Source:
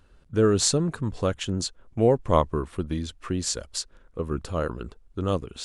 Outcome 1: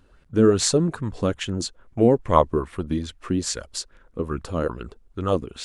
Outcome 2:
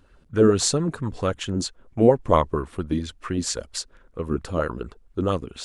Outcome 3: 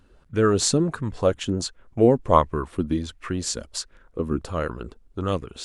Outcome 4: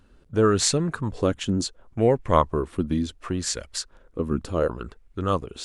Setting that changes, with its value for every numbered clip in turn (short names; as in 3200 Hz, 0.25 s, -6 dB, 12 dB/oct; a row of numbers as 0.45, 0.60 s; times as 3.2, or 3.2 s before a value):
LFO bell, rate: 2.4, 4.4, 1.4, 0.69 Hz